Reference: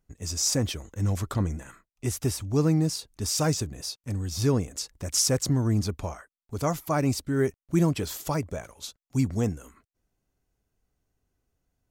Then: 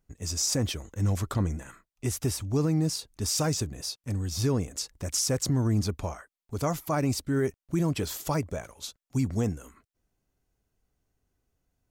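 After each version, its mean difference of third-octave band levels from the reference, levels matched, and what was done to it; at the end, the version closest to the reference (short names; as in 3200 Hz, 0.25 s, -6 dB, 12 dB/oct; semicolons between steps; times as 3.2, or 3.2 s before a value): 1.5 dB: limiter -17.5 dBFS, peak gain reduction 5.5 dB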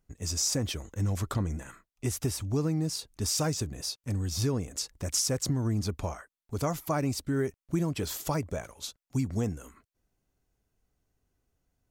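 2.5 dB: compressor 5:1, threshold -25 dBFS, peak gain reduction 8 dB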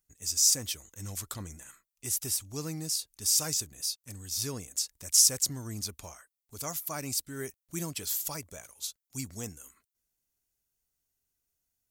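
7.5 dB: pre-emphasis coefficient 0.9; gain +4.5 dB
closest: first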